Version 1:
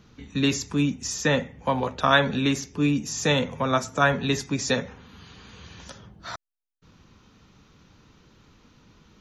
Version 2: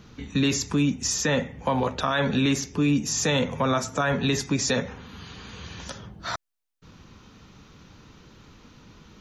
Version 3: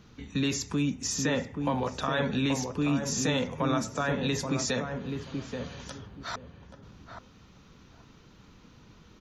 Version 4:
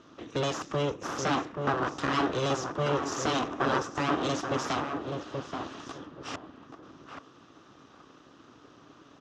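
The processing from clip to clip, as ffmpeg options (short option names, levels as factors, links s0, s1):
-filter_complex "[0:a]asplit=2[s0][s1];[s1]acompressor=threshold=0.0398:ratio=6,volume=0.841[s2];[s0][s2]amix=inputs=2:normalize=0,alimiter=limit=0.2:level=0:latency=1:release=37"
-filter_complex "[0:a]asplit=2[s0][s1];[s1]adelay=830,lowpass=f=810:p=1,volume=0.631,asplit=2[s2][s3];[s3]adelay=830,lowpass=f=810:p=1,volume=0.23,asplit=2[s4][s5];[s5]adelay=830,lowpass=f=810:p=1,volume=0.23[s6];[s0][s2][s4][s6]amix=inputs=4:normalize=0,volume=0.531"
-af "aeval=exprs='abs(val(0))':c=same,highpass=120,equalizer=f=200:t=q:w=4:g=-4,equalizer=f=290:t=q:w=4:g=8,equalizer=f=1200:t=q:w=4:g=8,equalizer=f=2200:t=q:w=4:g=-8,equalizer=f=4400:t=q:w=4:g=-7,lowpass=f=6100:w=0.5412,lowpass=f=6100:w=1.3066,volume=1.5"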